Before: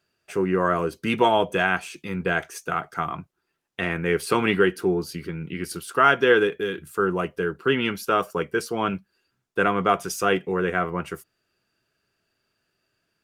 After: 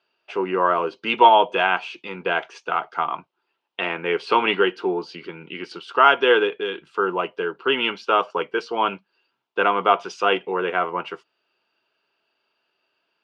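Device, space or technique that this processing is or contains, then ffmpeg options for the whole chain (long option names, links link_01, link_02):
phone earpiece: -af "highpass=380,equalizer=frequency=920:width_type=q:width=4:gain=8,equalizer=frequency=1800:width_type=q:width=4:gain=-6,equalizer=frequency=2900:width_type=q:width=4:gain=6,lowpass=frequency=4400:width=0.5412,lowpass=frequency=4400:width=1.3066,volume=2.5dB"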